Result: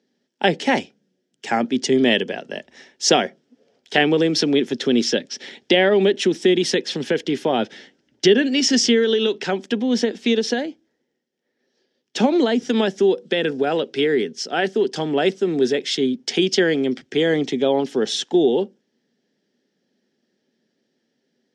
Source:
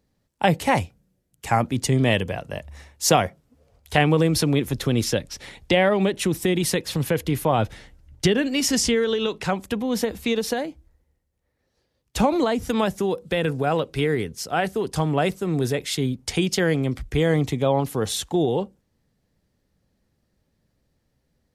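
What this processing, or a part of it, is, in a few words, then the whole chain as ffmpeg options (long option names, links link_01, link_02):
television speaker: -af "highpass=frequency=200:width=0.5412,highpass=frequency=200:width=1.3066,equalizer=frequency=240:width_type=q:width=4:gain=7,equalizer=frequency=390:width_type=q:width=4:gain=9,equalizer=frequency=1100:width_type=q:width=4:gain=-9,equalizer=frequency=1700:width_type=q:width=4:gain=6,equalizer=frequency=3200:width_type=q:width=4:gain=8,equalizer=frequency=5400:width_type=q:width=4:gain=7,lowpass=frequency=6900:width=0.5412,lowpass=frequency=6900:width=1.3066"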